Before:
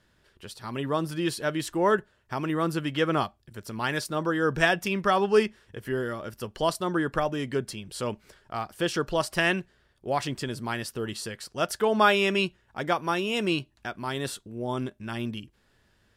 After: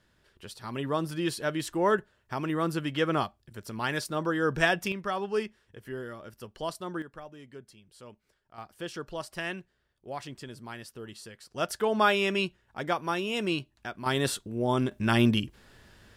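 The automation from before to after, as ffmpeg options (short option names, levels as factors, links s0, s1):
-af "asetnsamples=n=441:p=0,asendcmd='4.92 volume volume -8.5dB;7.02 volume volume -18dB;8.58 volume volume -10.5dB;11.51 volume volume -3dB;14.06 volume volume 4dB;14.92 volume volume 10dB',volume=0.794"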